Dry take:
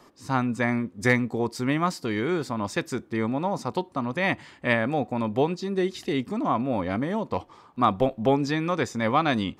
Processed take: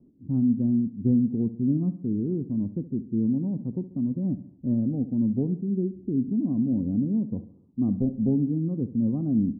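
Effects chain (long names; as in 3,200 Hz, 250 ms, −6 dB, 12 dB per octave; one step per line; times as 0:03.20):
transistor ladder low-pass 290 Hz, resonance 40%
on a send: repeating echo 69 ms, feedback 48%, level −14.5 dB
on the sum: level +8.5 dB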